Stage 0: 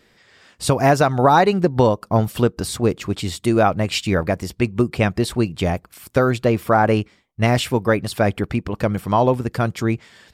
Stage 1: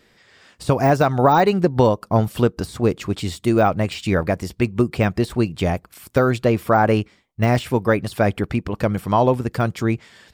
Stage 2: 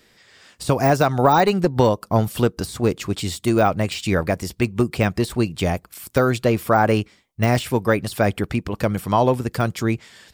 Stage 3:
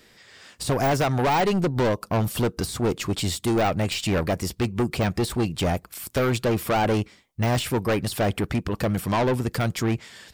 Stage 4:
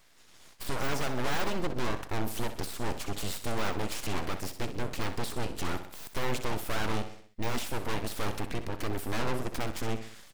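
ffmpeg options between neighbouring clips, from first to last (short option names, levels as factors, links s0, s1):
-af "deesser=0.65"
-filter_complex "[0:a]highshelf=f=3900:g=7.5,acrossover=split=620[s0][s1];[s0]aeval=exprs='clip(val(0),-1,0.188)':c=same[s2];[s2][s1]amix=inputs=2:normalize=0,volume=0.891"
-af "aeval=exprs='(tanh(10*val(0)+0.25)-tanh(0.25))/10':c=same,volume=1.26"
-filter_complex "[0:a]asplit=2[s0][s1];[s1]aecho=0:1:63|126|189|252|315:0.282|0.144|0.0733|0.0374|0.0191[s2];[s0][s2]amix=inputs=2:normalize=0,aeval=exprs='abs(val(0))':c=same,volume=0.531"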